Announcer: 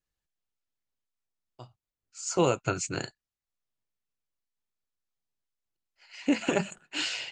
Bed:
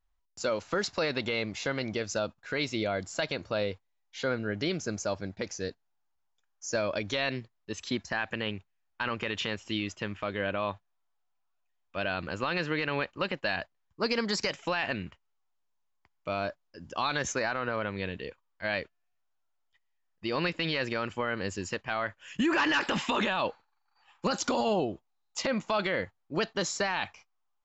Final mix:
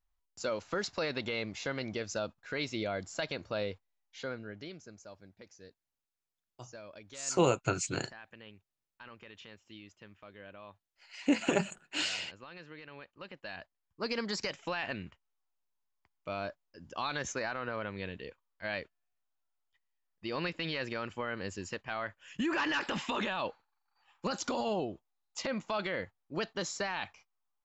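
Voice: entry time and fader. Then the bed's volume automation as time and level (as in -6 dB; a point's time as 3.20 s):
5.00 s, -2.0 dB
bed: 4.00 s -4.5 dB
4.94 s -19 dB
13.01 s -19 dB
14.13 s -5.5 dB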